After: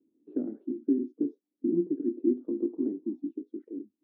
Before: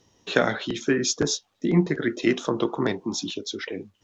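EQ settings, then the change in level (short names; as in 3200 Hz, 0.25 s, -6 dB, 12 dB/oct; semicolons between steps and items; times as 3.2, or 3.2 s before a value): Butterworth band-pass 290 Hz, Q 2.9; 0.0 dB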